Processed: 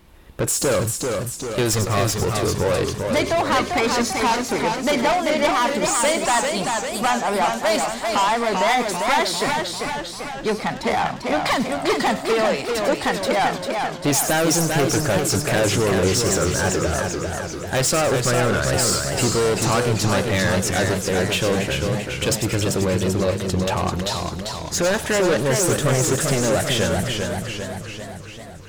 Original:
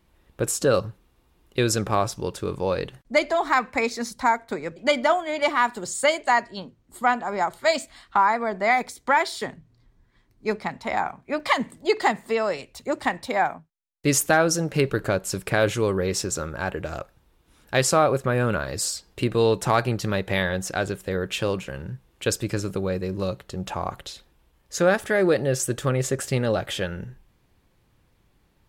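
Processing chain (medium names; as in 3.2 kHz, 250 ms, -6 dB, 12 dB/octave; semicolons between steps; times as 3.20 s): 1.73–2.25 s: comb filter that takes the minimum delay 1.6 ms; in parallel at -2.5 dB: compression, threshold -35 dBFS, peak gain reduction 19.5 dB; on the sum: saturation -24 dBFS, distortion -6 dB; feedback echo behind a high-pass 99 ms, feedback 45%, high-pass 4.4 kHz, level -7 dB; modulated delay 393 ms, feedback 60%, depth 126 cents, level -4.5 dB; trim +7.5 dB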